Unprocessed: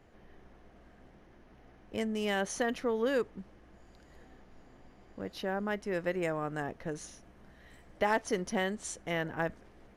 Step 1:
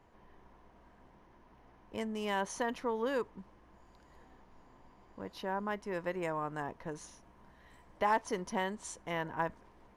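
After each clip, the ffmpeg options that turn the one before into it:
-af "equalizer=f=980:t=o:w=0.31:g=14,volume=-4.5dB"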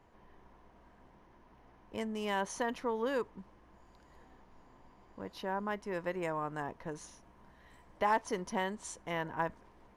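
-af anull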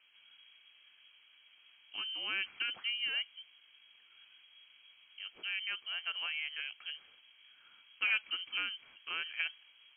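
-af "lowpass=f=2.8k:t=q:w=0.5098,lowpass=f=2.8k:t=q:w=0.6013,lowpass=f=2.8k:t=q:w=0.9,lowpass=f=2.8k:t=q:w=2.563,afreqshift=-3300,volume=-2.5dB"

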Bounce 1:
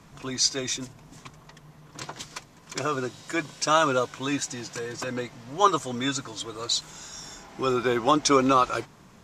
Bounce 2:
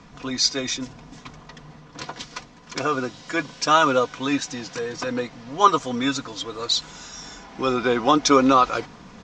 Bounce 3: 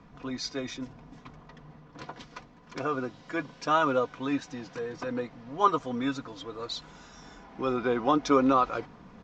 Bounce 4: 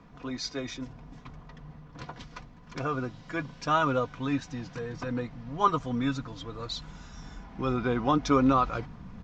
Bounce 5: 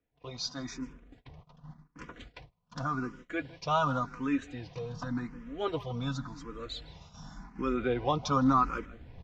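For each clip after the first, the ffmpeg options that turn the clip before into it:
-af "lowpass=f=6.1k:w=0.5412,lowpass=f=6.1k:w=1.3066,aecho=1:1:4.1:0.36,areverse,acompressor=mode=upward:threshold=-40dB:ratio=2.5,areverse,volume=3.5dB"
-af "lowpass=f=1.5k:p=1,volume=-5.5dB"
-af "asubboost=boost=4.5:cutoff=170"
-filter_complex "[0:a]asplit=2[a][b];[b]adelay=160,highpass=300,lowpass=3.4k,asoftclip=type=hard:threshold=-19.5dB,volume=-18dB[c];[a][c]amix=inputs=2:normalize=0,agate=range=-25dB:threshold=-45dB:ratio=16:detection=peak,asplit=2[d][e];[e]afreqshift=0.89[f];[d][f]amix=inputs=2:normalize=1"

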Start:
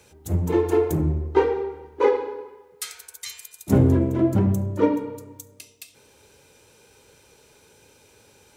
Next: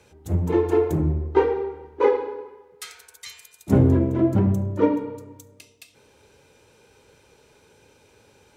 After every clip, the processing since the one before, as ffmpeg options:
-af "aemphasis=mode=reproduction:type=cd"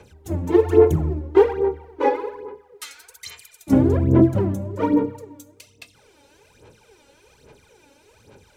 -af "aphaser=in_gain=1:out_gain=1:delay=3.6:decay=0.72:speed=1.2:type=sinusoidal,volume=-1dB"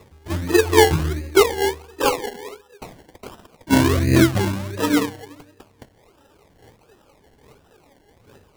-af "acrusher=samples=28:mix=1:aa=0.000001:lfo=1:lforange=16.8:lforate=1.4"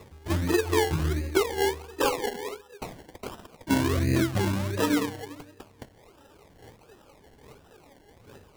-af "acompressor=threshold=-21dB:ratio=6"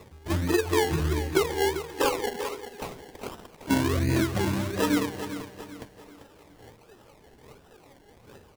-af "bandreject=f=50:t=h:w=6,bandreject=f=100:t=h:w=6,aecho=1:1:393|786|1179|1572:0.282|0.113|0.0451|0.018"

